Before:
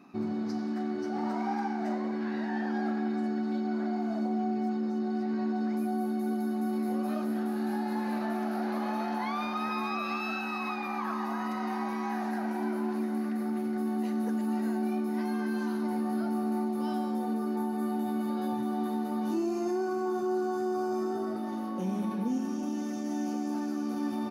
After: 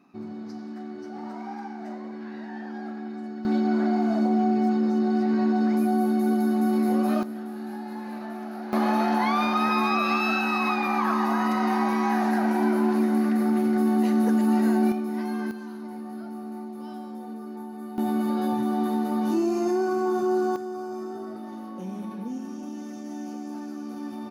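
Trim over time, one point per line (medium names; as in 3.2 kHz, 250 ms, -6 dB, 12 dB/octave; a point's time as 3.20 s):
-4.5 dB
from 3.45 s +8 dB
from 7.23 s -3.5 dB
from 8.73 s +9 dB
from 14.92 s +2 dB
from 15.51 s -6 dB
from 17.98 s +6 dB
from 20.56 s -3 dB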